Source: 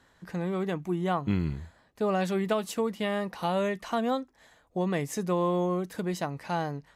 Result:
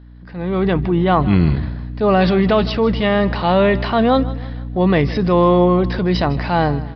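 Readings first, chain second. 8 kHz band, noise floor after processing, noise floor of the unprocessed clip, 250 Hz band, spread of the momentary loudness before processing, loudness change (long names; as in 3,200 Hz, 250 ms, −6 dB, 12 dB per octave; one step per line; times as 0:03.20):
below −10 dB, −35 dBFS, −64 dBFS, +14.0 dB, 7 LU, +14.0 dB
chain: mains hum 60 Hz, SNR 11 dB
automatic gain control gain up to 16 dB
transient designer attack −5 dB, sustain +6 dB
on a send: repeating echo 158 ms, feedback 43%, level −17.5 dB
on the sum: downsampling to 11,025 Hz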